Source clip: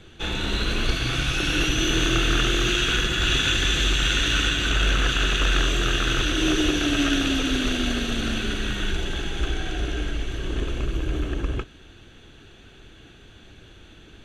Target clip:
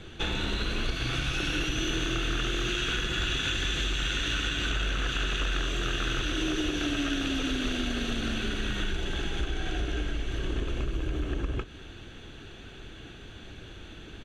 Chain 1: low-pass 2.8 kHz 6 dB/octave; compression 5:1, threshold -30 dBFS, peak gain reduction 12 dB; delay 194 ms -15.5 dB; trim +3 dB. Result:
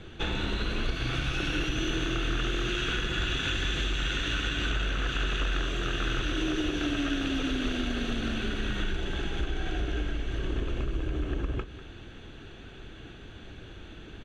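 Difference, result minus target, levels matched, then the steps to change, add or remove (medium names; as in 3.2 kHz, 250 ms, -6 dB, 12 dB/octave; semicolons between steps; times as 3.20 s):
echo-to-direct +8.5 dB; 8 kHz band -4.0 dB
change: low-pass 7.6 kHz 6 dB/octave; change: delay 194 ms -24 dB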